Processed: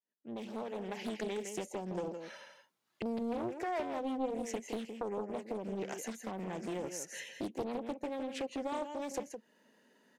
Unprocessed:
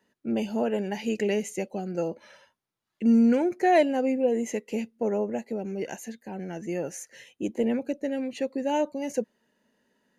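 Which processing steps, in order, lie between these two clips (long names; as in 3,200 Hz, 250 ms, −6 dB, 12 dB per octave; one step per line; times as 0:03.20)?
fade in at the beginning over 2.02 s
Bessel high-pass filter 200 Hz, order 6
downward compressor 4 to 1, threshold −41 dBFS, peak gain reduction 20.5 dB
on a send: single-tap delay 164 ms −7.5 dB
on the sum: highs frequency-modulated by the lows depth 0.7 ms
level +3.5 dB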